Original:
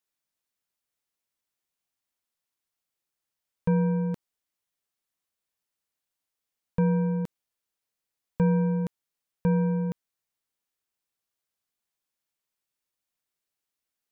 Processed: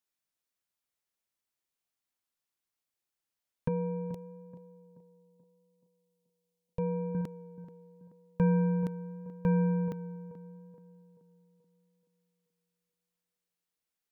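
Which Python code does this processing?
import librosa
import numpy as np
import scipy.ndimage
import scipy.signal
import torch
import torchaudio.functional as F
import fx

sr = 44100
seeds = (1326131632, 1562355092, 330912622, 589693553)

y = fx.fixed_phaser(x, sr, hz=590.0, stages=4, at=(3.68, 7.15))
y = fx.echo_tape(y, sr, ms=430, feedback_pct=51, wet_db=-12.5, lp_hz=1100.0, drive_db=5.0, wow_cents=19)
y = y * librosa.db_to_amplitude(-3.0)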